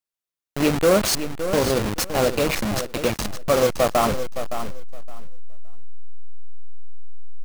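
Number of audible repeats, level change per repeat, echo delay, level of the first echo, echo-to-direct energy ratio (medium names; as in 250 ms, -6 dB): 2, -15.0 dB, 566 ms, -10.0 dB, -10.0 dB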